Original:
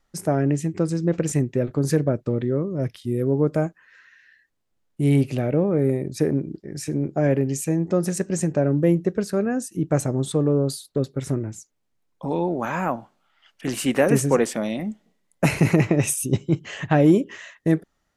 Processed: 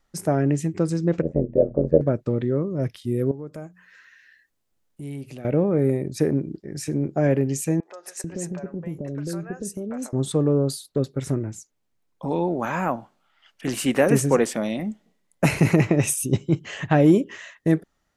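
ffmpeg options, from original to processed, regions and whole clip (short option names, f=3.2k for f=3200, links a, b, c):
-filter_complex "[0:a]asettb=1/sr,asplit=3[a][b][c];[a]atrim=end=1.224[d];[b]atrim=start=1.22:end=2.01,asetpts=PTS-STARTPTS,afade=t=in:d=0.004:c=qsin,afade=t=out:st=0.786:d=0.004:c=qsin,bandreject=f=60:t=h:w=6,bandreject=f=120:t=h:w=6,bandreject=f=180:t=h:w=6,bandreject=f=240:t=h:w=6,tremolo=f=86:d=0.857,lowpass=f=580:t=q:w=6.3[e];[c]atrim=start=2.006[f];[d][e]acrossfade=d=0.004:c1=hsin:c2=qsin[g];[g][f]acrossfade=d=0.004:c1=qsin:c2=hsin,asettb=1/sr,asplit=3[h][i][j];[h]atrim=end=3.314[k];[i]atrim=start=3.31:end=5.45,asetpts=PTS-STARTPTS,afade=t=in:d=0.004:c=qsin,afade=t=out:st=2.136:d=0.004:c=qsin,highshelf=f=6.1k:g=6.5,bandreject=f=60:t=h:w=6,bandreject=f=120:t=h:w=6,bandreject=f=180:t=h:w=6,acompressor=threshold=-44dB:ratio=2:attack=3.2:release=140:knee=1:detection=peak[l];[j]atrim=start=5.446[m];[k][l]acrossfade=d=0.004:c1=hsin:c2=qsin[n];[n][m]acrossfade=d=0.004:c1=qsin:c2=hsin,asettb=1/sr,asplit=3[o][p][q];[o]atrim=end=7.804[r];[p]atrim=start=7.8:end=10.13,asetpts=PTS-STARTPTS,afade=t=in:d=0.004:c=qsin,afade=t=out:st=2.326:d=0.004:c=qsin,acompressor=threshold=-27dB:ratio=4:attack=3.2:release=140:knee=1:detection=peak,acrossover=split=590|3400[s][t][u];[u]adelay=30[v];[s]adelay=440[w];[w][t][v]amix=inputs=3:normalize=0,atrim=end_sample=102753[x];[q]atrim=start=10.126[y];[r][x]acrossfade=d=0.004:c1=hsin:c2=qsin[z];[z][y]acrossfade=d=0.004:c1=qsin:c2=hsin"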